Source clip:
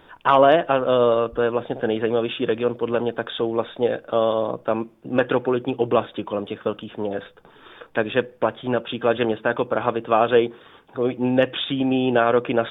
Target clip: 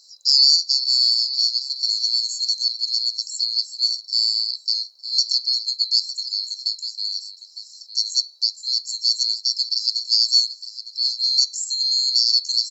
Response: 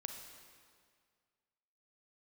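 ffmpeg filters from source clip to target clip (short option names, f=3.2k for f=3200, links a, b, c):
-filter_complex "[0:a]afftfilt=real='real(if(lt(b,736),b+184*(1-2*mod(floor(b/184),2)),b),0)':imag='imag(if(lt(b,736),b+184*(1-2*mod(floor(b/184),2)),b),0)':win_size=2048:overlap=0.75,equalizer=f=125:t=o:w=1:g=-10,equalizer=f=250:t=o:w=1:g=-4,equalizer=f=500:t=o:w=1:g=8,equalizer=f=1k:t=o:w=1:g=5,equalizer=f=2k:t=o:w=1:g=-6,asplit=2[a][b];[b]adelay=908,lowpass=f=1.9k:p=1,volume=-4.5dB,asplit=2[c][d];[d]adelay=908,lowpass=f=1.9k:p=1,volume=0.19,asplit=2[e][f];[f]adelay=908,lowpass=f=1.9k:p=1,volume=0.19[g];[c][e][g]amix=inputs=3:normalize=0[h];[a][h]amix=inputs=2:normalize=0"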